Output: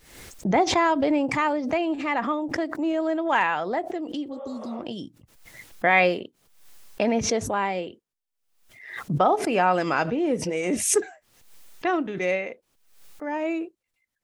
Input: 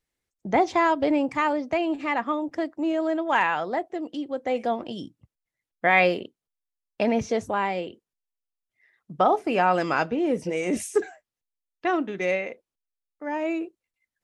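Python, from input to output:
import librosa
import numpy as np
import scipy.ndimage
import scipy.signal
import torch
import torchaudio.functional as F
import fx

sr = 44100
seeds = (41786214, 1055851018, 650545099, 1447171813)

y = fx.spec_repair(x, sr, seeds[0], start_s=4.35, length_s=0.4, low_hz=450.0, high_hz=3700.0, source='both')
y = fx.pre_swell(y, sr, db_per_s=72.0)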